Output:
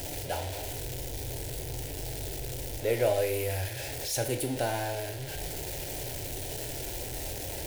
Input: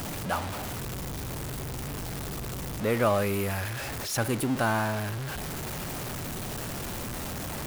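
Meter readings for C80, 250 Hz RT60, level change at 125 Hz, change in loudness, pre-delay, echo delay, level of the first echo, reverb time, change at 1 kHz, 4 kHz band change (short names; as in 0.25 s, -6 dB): 15.0 dB, 0.55 s, -3.5 dB, -2.0 dB, 22 ms, none, none, 0.50 s, -6.0 dB, -0.5 dB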